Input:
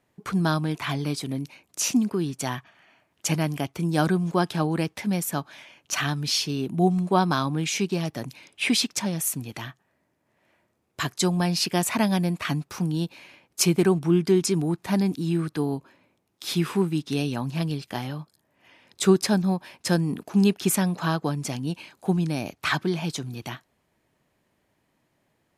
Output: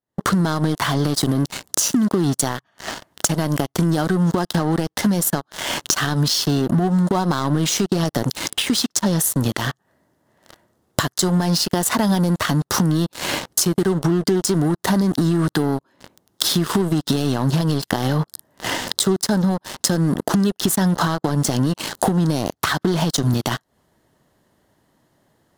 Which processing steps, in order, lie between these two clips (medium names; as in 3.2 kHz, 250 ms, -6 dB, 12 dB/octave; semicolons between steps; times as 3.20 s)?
recorder AGC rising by 80 dB/s; waveshaping leveller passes 5; compression, threshold -3 dBFS, peak gain reduction 7.5 dB; peaking EQ 2.4 kHz -14.5 dB 0.3 oct; trim -11.5 dB